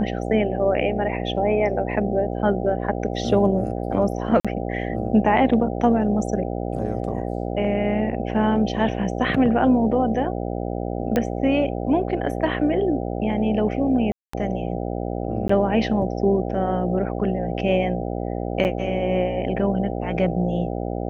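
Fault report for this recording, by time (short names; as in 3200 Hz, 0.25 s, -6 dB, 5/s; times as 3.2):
buzz 60 Hz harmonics 13 -27 dBFS
4.4–4.45 gap 46 ms
11.16 pop -9 dBFS
14.12–14.33 gap 0.214 s
15.48–15.49 gap 14 ms
18.64–18.65 gap 9.2 ms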